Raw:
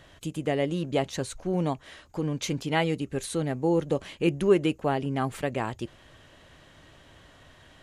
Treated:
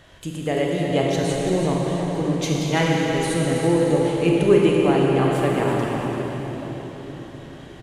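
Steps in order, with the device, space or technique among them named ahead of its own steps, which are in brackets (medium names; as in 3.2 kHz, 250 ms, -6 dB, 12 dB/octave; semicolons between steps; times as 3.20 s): cave (delay 335 ms -10 dB; reverberation RT60 4.7 s, pre-delay 28 ms, DRR -3 dB); trim +2.5 dB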